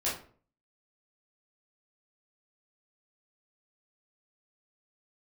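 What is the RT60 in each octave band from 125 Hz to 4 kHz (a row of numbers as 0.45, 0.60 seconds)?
0.60, 0.55, 0.50, 0.40, 0.35, 0.30 seconds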